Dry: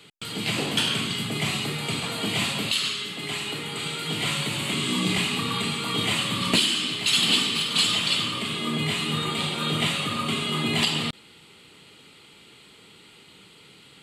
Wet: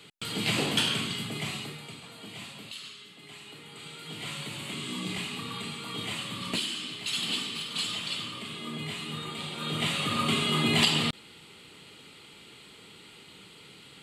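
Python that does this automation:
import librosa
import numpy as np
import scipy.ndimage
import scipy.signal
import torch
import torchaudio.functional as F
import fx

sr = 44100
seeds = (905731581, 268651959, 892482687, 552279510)

y = fx.gain(x, sr, db=fx.line((0.64, -1.0), (1.61, -9.0), (1.97, -17.0), (3.31, -17.0), (4.46, -10.0), (9.44, -10.0), (10.21, 0.0)))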